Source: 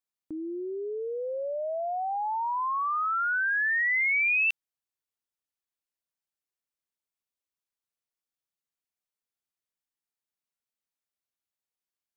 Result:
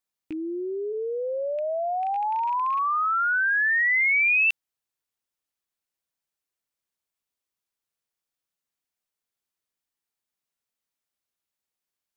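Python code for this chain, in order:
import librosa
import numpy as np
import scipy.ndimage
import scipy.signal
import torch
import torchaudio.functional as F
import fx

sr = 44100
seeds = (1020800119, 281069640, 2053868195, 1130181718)

y = fx.rattle_buzz(x, sr, strikes_db=-58.0, level_db=-38.0)
y = fx.highpass(y, sr, hz=260.0, slope=24, at=(0.92, 2.61), fade=0.02)
y = F.gain(torch.from_numpy(y), 4.0).numpy()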